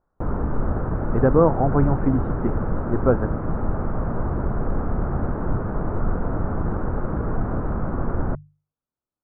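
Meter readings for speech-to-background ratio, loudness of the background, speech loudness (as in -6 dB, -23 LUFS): 5.0 dB, -27.0 LUFS, -22.0 LUFS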